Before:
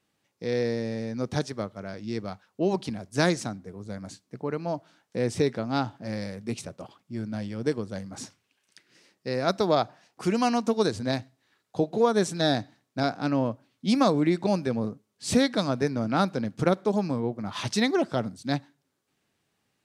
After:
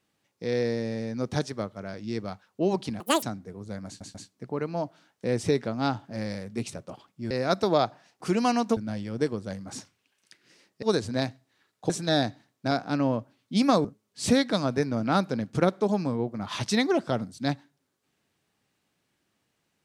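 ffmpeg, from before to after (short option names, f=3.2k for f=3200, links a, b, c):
-filter_complex "[0:a]asplit=10[a][b][c][d][e][f][g][h][i][j];[a]atrim=end=3.004[k];[b]atrim=start=3:end=3.42,asetpts=PTS-STARTPTS,asetrate=81585,aresample=44100[l];[c]atrim=start=3.416:end=4.202[m];[d]atrim=start=4.058:end=4.202[n];[e]atrim=start=4.058:end=7.222[o];[f]atrim=start=9.278:end=10.742[p];[g]atrim=start=7.218:end=9.282[q];[h]atrim=start=10.738:end=11.812[r];[i]atrim=start=12.218:end=14.172[s];[j]atrim=start=14.888[t];[k][l]acrossfade=d=0.004:c1=hsin:c2=hsin[u];[u][m]acrossfade=d=0.004:c1=hsin:c2=hsin[v];[v][n]acrossfade=d=0.004:c1=hsin:c2=hsin[w];[w][o]acrossfade=d=0.004:c1=hsin:c2=hsin[x];[x][p]acrossfade=d=0.004:c1=hsin:c2=hsin[y];[y][q]acrossfade=d=0.004:c1=hsin:c2=hsin[z];[z][r]acrossfade=d=0.004:c1=hsin:c2=hsin[aa];[aa][s]acrossfade=d=0.004:c1=hsin:c2=hsin[ab];[ab][t]acrossfade=d=0.004:c1=hsin:c2=hsin"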